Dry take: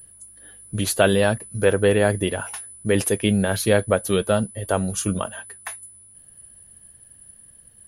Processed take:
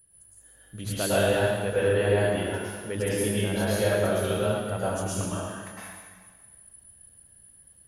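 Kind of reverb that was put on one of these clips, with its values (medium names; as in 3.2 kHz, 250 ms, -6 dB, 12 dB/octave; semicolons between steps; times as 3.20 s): plate-style reverb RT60 1.6 s, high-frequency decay 0.9×, pre-delay 95 ms, DRR -9.5 dB; trim -14.5 dB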